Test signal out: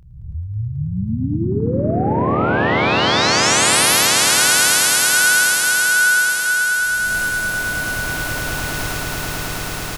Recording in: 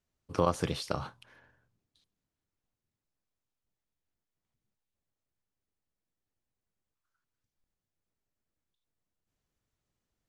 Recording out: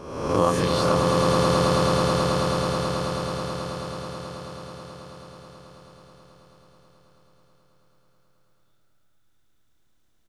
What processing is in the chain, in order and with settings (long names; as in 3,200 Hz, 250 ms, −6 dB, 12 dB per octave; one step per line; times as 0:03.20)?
peak hold with a rise ahead of every peak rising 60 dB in 1.05 s
double-tracking delay 27 ms −8 dB
echo that builds up and dies away 108 ms, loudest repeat 8, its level −5 dB
level +3.5 dB